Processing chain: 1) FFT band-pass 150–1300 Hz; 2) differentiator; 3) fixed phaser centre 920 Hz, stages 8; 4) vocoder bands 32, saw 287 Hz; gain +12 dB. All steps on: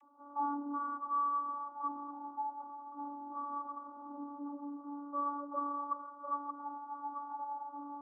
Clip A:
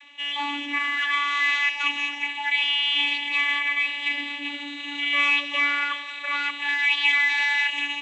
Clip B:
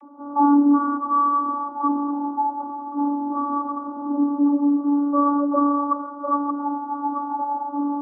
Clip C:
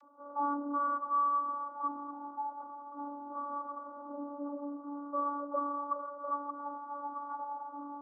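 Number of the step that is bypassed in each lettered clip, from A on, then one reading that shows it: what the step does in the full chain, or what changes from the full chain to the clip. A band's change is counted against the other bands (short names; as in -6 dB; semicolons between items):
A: 1, loudness change +17.5 LU; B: 2, momentary loudness spread change -1 LU; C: 3, momentary loudness spread change +2 LU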